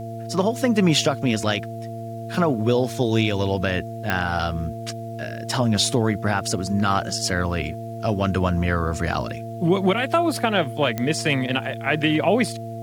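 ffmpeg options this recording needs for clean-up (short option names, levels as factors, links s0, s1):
-af "adeclick=t=4,bandreject=f=114:t=h:w=4,bandreject=f=228:t=h:w=4,bandreject=f=342:t=h:w=4,bandreject=f=456:t=h:w=4,bandreject=f=680:w=30,agate=range=0.0891:threshold=0.0631"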